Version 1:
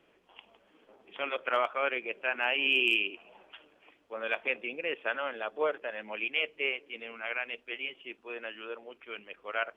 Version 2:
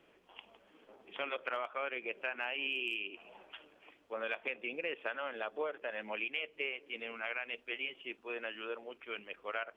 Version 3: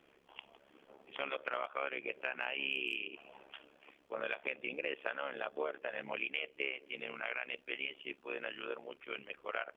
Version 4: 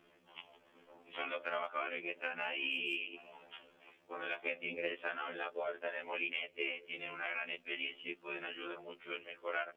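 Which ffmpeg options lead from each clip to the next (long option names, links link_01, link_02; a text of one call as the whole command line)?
ffmpeg -i in.wav -af "acompressor=threshold=-34dB:ratio=6" out.wav
ffmpeg -i in.wav -af "tremolo=f=69:d=0.857,volume=3dB" out.wav
ffmpeg -i in.wav -af "afftfilt=real='re*2*eq(mod(b,4),0)':imag='im*2*eq(mod(b,4),0)':win_size=2048:overlap=0.75,volume=2.5dB" out.wav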